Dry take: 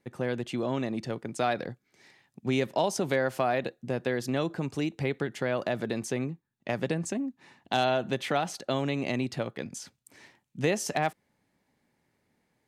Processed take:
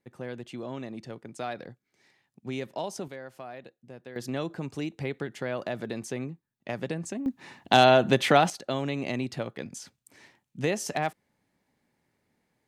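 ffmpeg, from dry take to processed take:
-af "asetnsamples=n=441:p=0,asendcmd='3.08 volume volume -15dB;4.16 volume volume -3dB;7.26 volume volume 8dB;8.5 volume volume -1dB',volume=0.447"

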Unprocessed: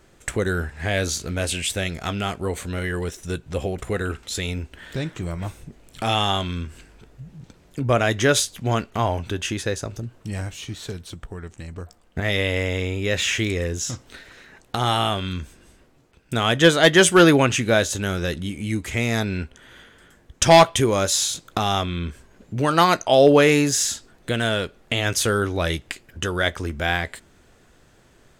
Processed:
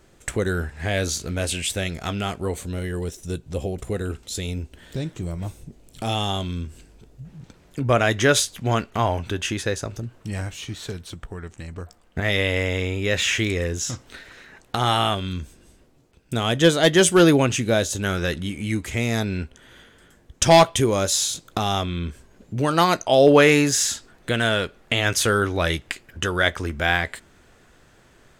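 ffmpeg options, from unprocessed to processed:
-af "asetnsamples=n=441:p=0,asendcmd='2.56 equalizer g -9;7.25 equalizer g 1.5;15.15 equalizer g -5.5;18.04 equalizer g 3;18.85 equalizer g -3;23.28 equalizer g 3',equalizer=f=1600:t=o:w=2:g=-2"

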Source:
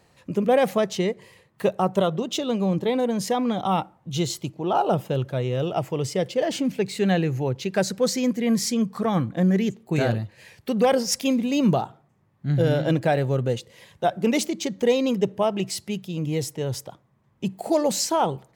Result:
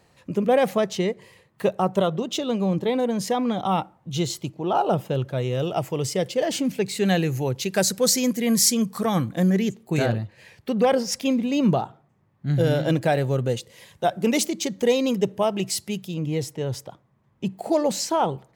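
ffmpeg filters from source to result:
-af "asetnsamples=n=441:p=0,asendcmd='5.38 equalizer g 6.5;7.05 equalizer g 14;9.5 equalizer g 5.5;10.06 equalizer g -5;12.47 equalizer g 6;16.14 equalizer g -4.5',equalizer=f=13000:t=o:w=1.9:g=-0.5"

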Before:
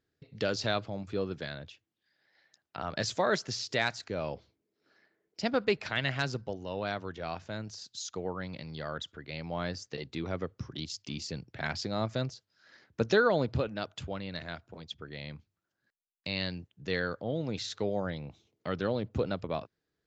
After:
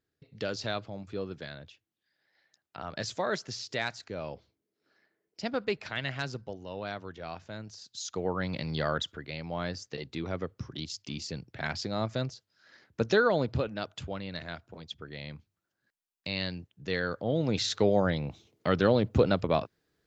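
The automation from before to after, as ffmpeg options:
-af "volume=6.31,afade=t=in:st=7.84:d=0.93:silence=0.251189,afade=t=out:st=8.77:d=0.6:silence=0.375837,afade=t=in:st=17.01:d=0.67:silence=0.446684"

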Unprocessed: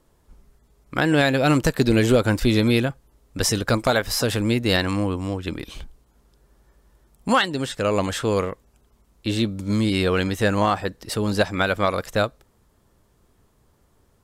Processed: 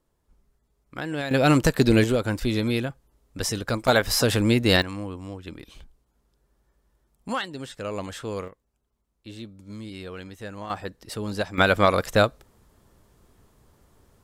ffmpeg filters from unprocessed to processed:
-af "asetnsamples=n=441:p=0,asendcmd='1.31 volume volume 0dB;2.04 volume volume -6dB;3.88 volume volume 1dB;4.82 volume volume -10dB;8.48 volume volume -17dB;10.7 volume volume -7.5dB;11.58 volume volume 2.5dB',volume=0.266"

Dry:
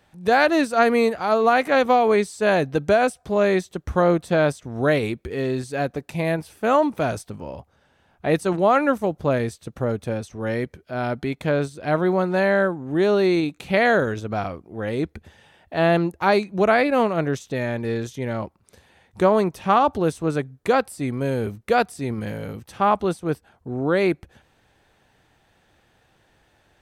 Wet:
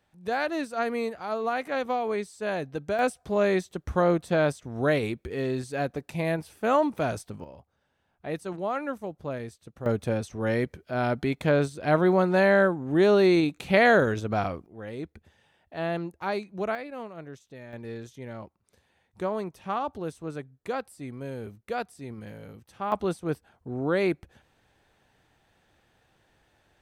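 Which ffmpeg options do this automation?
-af "asetnsamples=n=441:p=0,asendcmd='2.99 volume volume -4.5dB;7.44 volume volume -12.5dB;9.86 volume volume -1dB;14.66 volume volume -11.5dB;16.75 volume volume -19dB;17.73 volume volume -12.5dB;22.92 volume volume -5dB',volume=0.282"

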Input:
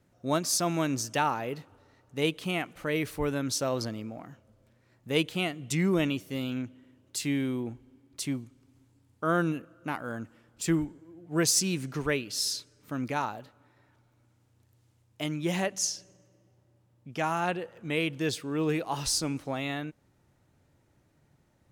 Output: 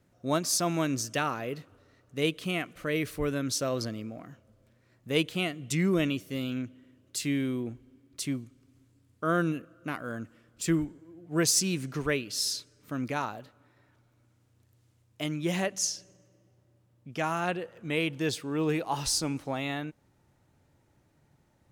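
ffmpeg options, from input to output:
-af "asetnsamples=n=441:p=0,asendcmd='0.85 equalizer g -13.5;4.29 equalizer g -6.5;5.43 equalizer g -12.5;10.79 equalizer g -5;17.93 equalizer g 3',equalizer=f=860:t=o:w=0.22:g=-2"

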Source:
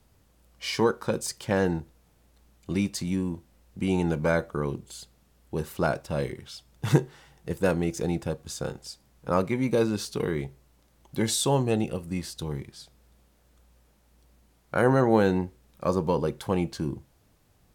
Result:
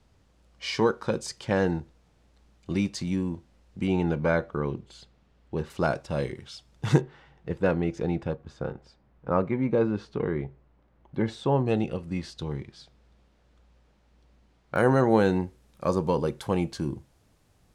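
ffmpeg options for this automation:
-af "asetnsamples=n=441:p=0,asendcmd='3.87 lowpass f 3700;5.7 lowpass f 7200;7.01 lowpass f 2900;8.35 lowpass f 1800;11.66 lowpass f 4500;14.76 lowpass f 11000',lowpass=6200"

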